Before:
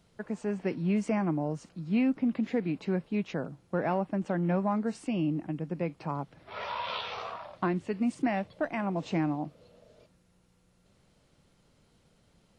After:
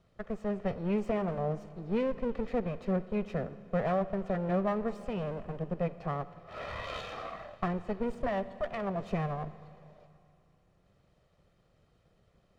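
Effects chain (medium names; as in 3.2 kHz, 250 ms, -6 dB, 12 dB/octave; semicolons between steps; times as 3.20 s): comb filter that takes the minimum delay 1.6 ms; low-pass 1.8 kHz 6 dB/octave; on a send: reverberation RT60 2.7 s, pre-delay 48 ms, DRR 15 dB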